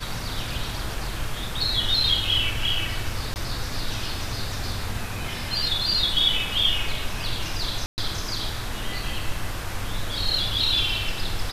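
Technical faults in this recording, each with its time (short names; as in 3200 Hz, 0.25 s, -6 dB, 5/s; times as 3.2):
3.34–3.36 gap 19 ms
7.86–7.98 gap 0.119 s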